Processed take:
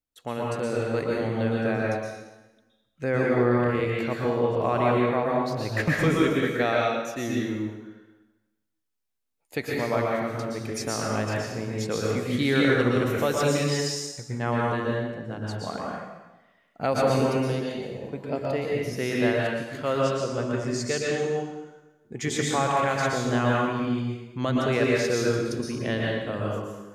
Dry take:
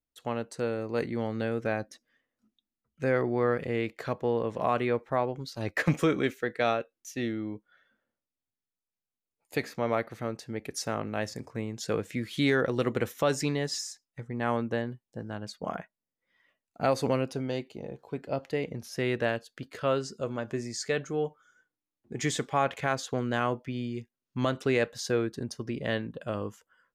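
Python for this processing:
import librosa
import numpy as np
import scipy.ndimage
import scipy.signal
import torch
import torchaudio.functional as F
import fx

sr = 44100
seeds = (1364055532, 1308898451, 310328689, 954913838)

y = fx.rev_plate(x, sr, seeds[0], rt60_s=1.1, hf_ratio=0.9, predelay_ms=105, drr_db=-3.5)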